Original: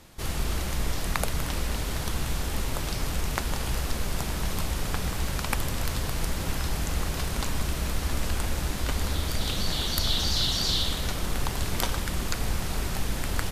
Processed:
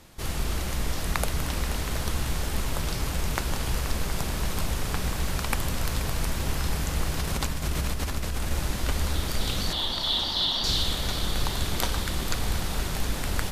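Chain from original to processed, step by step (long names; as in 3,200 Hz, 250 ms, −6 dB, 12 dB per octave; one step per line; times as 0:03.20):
0:07.21–0:08.51: compressor whose output falls as the input rises −29 dBFS, ratio −1
0:09.73–0:10.64: loudspeaker in its box 260–4,400 Hz, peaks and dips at 430 Hz −7 dB, 930 Hz +6 dB, 1,500 Hz −6 dB, 2,400 Hz −9 dB, 3,400 Hz +7 dB
echo machine with several playback heads 240 ms, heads second and third, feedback 67%, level −13 dB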